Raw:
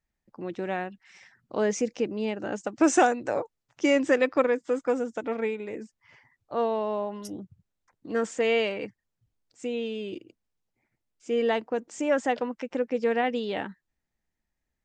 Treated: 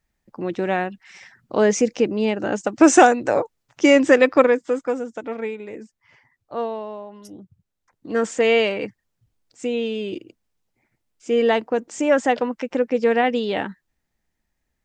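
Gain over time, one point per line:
4.44 s +8.5 dB
5 s +1 dB
6.59 s +1 dB
7.04 s -6 dB
8.3 s +7 dB

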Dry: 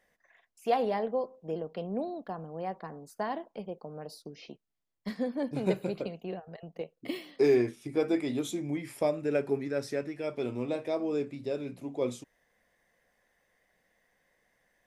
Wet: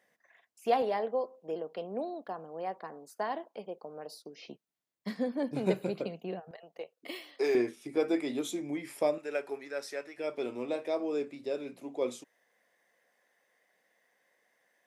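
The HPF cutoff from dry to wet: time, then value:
150 Hz
from 0.82 s 320 Hz
from 4.48 s 140 Hz
from 6.51 s 530 Hz
from 7.55 s 260 Hz
from 9.18 s 640 Hz
from 10.18 s 310 Hz

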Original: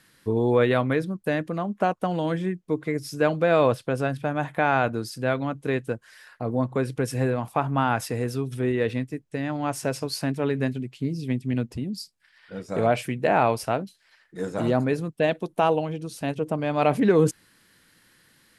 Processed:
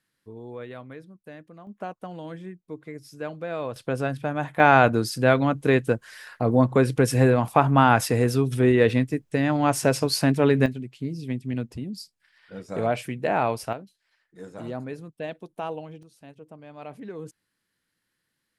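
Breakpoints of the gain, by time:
-18 dB
from 1.67 s -11.5 dB
from 3.76 s -1 dB
from 4.6 s +6 dB
from 10.66 s -3 dB
from 13.73 s -11 dB
from 16.03 s -19 dB

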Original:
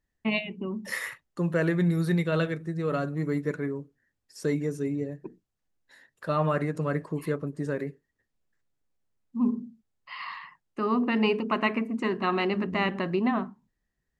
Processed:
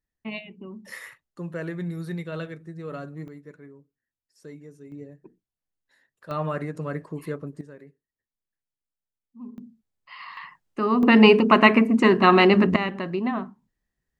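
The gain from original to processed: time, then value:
-7 dB
from 3.28 s -15.5 dB
from 4.92 s -9 dB
from 6.31 s -2.5 dB
from 7.61 s -15 dB
from 9.58 s -3 dB
from 10.37 s +4 dB
from 11.03 s +11 dB
from 12.76 s -0.5 dB

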